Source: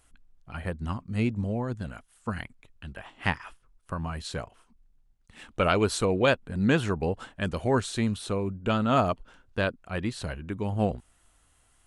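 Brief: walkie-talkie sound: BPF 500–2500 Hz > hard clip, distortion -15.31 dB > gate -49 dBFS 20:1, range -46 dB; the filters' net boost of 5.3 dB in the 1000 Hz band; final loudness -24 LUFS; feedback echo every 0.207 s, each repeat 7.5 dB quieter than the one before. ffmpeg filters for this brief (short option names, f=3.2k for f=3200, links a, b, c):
-af "highpass=500,lowpass=2.5k,equalizer=f=1k:t=o:g=8,aecho=1:1:207|414|621|828|1035:0.422|0.177|0.0744|0.0312|0.0131,asoftclip=type=hard:threshold=-15dB,agate=range=-46dB:threshold=-49dB:ratio=20,volume=6dB"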